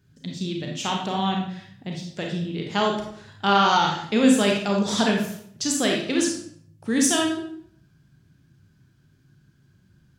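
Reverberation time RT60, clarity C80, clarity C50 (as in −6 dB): 0.65 s, 7.5 dB, 3.5 dB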